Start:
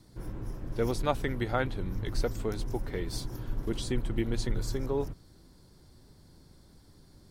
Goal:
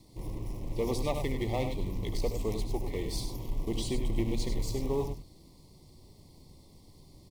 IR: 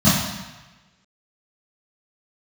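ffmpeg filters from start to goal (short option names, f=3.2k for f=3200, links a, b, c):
-filter_complex "[0:a]bandreject=f=60:t=h:w=6,bandreject=f=120:t=h:w=6,bandreject=f=180:t=h:w=6,bandreject=f=240:t=h:w=6,asplit=2[a][b];[b]acrusher=bits=2:mode=log:mix=0:aa=0.000001,volume=-6.5dB[c];[a][c]amix=inputs=2:normalize=0,asoftclip=type=tanh:threshold=-20.5dB,asuperstop=centerf=1500:order=8:qfactor=1.9,aecho=1:1:72|99:0.251|0.376,volume=-2.5dB"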